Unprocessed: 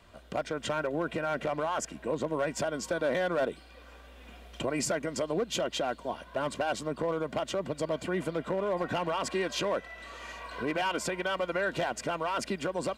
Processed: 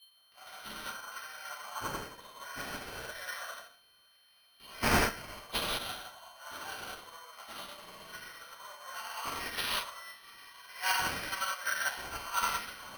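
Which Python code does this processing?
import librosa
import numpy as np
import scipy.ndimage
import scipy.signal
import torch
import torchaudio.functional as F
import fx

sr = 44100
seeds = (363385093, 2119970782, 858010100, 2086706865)

p1 = fx.spec_trails(x, sr, decay_s=0.73)
p2 = scipy.signal.sosfilt(scipy.signal.butter(4, 990.0, 'highpass', fs=sr, output='sos'), p1)
p3 = fx.high_shelf(p2, sr, hz=2100.0, db=-2.0)
p4 = fx.level_steps(p3, sr, step_db=16)
p5 = p3 + F.gain(torch.from_numpy(p4), 2.0).numpy()
p6 = fx.high_shelf(p5, sr, hz=10000.0, db=11.0)
p7 = p6 + 10.0 ** (-34.0 / 20.0) * np.sin(2.0 * np.pi * 3100.0 * np.arange(len(p6)) / sr)
p8 = p7 + fx.echo_single(p7, sr, ms=958, db=-21.5, dry=0)
p9 = fx.rev_gated(p8, sr, seeds[0], gate_ms=230, shape='flat', drr_db=-6.5)
p10 = np.repeat(p9[::6], 6)[:len(p9)]
p11 = fx.upward_expand(p10, sr, threshold_db=-34.0, expansion=2.5)
y = F.gain(torch.from_numpy(p11), -4.5).numpy()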